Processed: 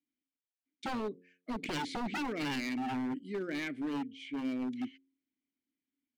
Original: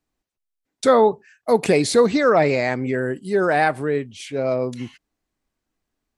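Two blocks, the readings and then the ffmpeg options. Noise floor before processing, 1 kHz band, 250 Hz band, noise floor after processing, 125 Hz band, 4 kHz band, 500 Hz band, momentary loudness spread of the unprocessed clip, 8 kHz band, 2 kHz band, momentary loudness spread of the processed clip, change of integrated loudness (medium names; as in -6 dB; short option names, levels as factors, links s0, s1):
-82 dBFS, -18.0 dB, -11.0 dB, under -85 dBFS, -19.0 dB, -11.0 dB, -25.0 dB, 12 LU, -19.5 dB, -15.5 dB, 7 LU, -17.5 dB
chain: -filter_complex "[0:a]asplit=3[s0][s1][s2];[s0]bandpass=f=270:t=q:w=8,volume=1[s3];[s1]bandpass=f=2290:t=q:w=8,volume=0.501[s4];[s2]bandpass=f=3010:t=q:w=8,volume=0.355[s5];[s3][s4][s5]amix=inputs=3:normalize=0,aeval=exprs='0.0316*(abs(mod(val(0)/0.0316+3,4)-2)-1)':c=same,bandreject=f=89.81:t=h:w=4,bandreject=f=179.62:t=h:w=4,bandreject=f=269.43:t=h:w=4,bandreject=f=359.24:t=h:w=4,bandreject=f=449.05:t=h:w=4,bandreject=f=538.86:t=h:w=4"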